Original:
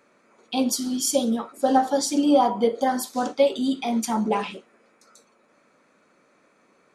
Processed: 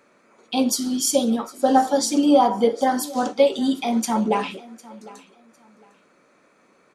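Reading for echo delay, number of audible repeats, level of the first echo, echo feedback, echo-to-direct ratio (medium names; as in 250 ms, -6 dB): 754 ms, 2, -20.5 dB, 24%, -20.5 dB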